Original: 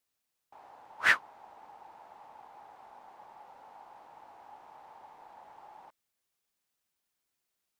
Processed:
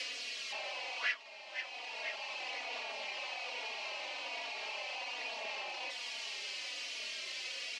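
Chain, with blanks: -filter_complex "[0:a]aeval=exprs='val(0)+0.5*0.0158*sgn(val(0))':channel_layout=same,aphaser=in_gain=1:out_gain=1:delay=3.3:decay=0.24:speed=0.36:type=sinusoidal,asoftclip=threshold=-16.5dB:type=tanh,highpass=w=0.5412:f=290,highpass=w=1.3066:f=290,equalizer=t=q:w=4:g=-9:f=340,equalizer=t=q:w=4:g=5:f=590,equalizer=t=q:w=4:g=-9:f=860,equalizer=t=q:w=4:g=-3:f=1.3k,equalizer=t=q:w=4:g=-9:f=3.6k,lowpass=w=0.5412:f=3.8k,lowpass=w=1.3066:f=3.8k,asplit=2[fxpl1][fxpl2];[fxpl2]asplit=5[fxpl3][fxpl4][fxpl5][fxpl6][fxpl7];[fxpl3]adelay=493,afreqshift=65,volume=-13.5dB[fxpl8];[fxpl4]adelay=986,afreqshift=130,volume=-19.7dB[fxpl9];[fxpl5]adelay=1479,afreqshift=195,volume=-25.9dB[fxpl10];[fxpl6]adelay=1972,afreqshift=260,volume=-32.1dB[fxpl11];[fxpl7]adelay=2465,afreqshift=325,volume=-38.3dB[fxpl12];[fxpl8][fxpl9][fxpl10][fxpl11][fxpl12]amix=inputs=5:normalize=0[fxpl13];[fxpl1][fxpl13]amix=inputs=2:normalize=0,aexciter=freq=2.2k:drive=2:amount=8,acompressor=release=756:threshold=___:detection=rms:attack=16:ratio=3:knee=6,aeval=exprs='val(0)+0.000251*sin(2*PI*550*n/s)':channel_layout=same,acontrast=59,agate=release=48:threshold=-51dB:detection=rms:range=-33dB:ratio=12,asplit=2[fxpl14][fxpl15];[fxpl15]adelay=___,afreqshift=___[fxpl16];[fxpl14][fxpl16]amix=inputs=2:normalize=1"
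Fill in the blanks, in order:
-42dB, 3.5, -1.2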